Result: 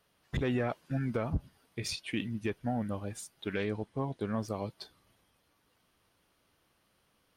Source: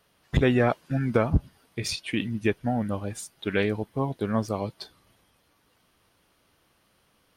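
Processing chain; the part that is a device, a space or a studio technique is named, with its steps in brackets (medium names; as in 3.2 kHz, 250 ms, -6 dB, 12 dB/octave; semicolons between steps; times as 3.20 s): 3.58–4.34 s: low-pass 10 kHz 24 dB/octave; soft clipper into limiter (saturation -11 dBFS, distortion -22 dB; peak limiter -17 dBFS, peak gain reduction 4.5 dB); trim -6 dB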